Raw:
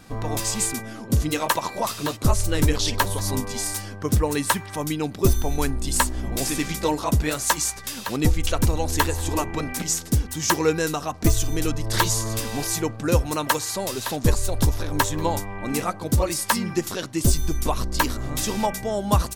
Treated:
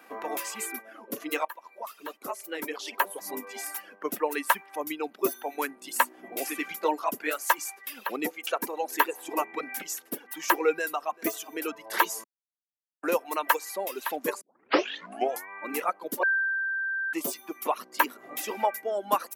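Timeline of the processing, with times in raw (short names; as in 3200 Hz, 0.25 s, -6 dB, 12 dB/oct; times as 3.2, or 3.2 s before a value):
1.45–3.65 fade in, from -16.5 dB
10.71–11.22 echo throw 0.39 s, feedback 15%, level -15.5 dB
12.24–13.03 mute
14.41 tape start 1.08 s
16.23–17.13 bleep 1570 Hz -20 dBFS
whole clip: reverb removal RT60 1.7 s; Bessel high-pass 460 Hz, order 6; band shelf 5700 Hz -11.5 dB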